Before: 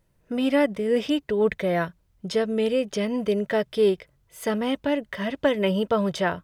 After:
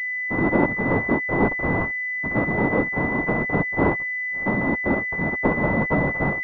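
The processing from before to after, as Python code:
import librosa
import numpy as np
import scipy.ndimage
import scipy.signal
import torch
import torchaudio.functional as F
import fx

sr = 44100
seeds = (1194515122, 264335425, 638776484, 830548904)

y = fx.envelope_flatten(x, sr, power=0.1)
y = fx.whisperise(y, sr, seeds[0])
y = fx.pwm(y, sr, carrier_hz=2000.0)
y = F.gain(torch.from_numpy(y), 3.5).numpy()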